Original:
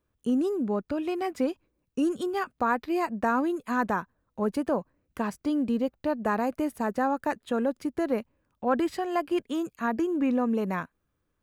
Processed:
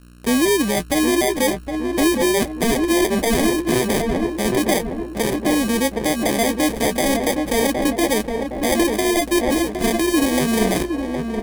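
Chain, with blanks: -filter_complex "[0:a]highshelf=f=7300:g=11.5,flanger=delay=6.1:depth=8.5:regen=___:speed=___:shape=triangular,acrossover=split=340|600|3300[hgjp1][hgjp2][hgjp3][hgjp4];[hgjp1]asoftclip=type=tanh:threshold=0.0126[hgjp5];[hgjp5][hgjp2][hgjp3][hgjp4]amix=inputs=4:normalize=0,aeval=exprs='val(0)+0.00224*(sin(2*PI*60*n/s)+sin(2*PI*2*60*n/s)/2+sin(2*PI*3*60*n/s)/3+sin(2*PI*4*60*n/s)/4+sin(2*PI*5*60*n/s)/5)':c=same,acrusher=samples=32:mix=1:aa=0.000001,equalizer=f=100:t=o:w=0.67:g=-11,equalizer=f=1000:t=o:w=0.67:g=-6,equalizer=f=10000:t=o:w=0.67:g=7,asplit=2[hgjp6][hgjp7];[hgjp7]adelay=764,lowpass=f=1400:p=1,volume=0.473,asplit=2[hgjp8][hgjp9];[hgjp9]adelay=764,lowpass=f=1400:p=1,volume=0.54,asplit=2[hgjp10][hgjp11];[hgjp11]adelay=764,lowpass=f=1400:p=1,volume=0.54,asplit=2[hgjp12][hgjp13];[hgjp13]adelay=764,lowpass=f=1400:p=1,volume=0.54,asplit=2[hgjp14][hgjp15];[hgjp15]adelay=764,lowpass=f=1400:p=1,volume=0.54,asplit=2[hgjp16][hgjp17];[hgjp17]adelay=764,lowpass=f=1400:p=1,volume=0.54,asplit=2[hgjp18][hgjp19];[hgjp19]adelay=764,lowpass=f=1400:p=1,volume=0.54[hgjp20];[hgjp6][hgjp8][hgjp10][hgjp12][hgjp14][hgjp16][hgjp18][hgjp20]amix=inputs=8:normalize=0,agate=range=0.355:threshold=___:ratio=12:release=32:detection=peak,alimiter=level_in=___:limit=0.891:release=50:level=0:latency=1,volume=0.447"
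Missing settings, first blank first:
30, 0.39, 0.00126, 16.8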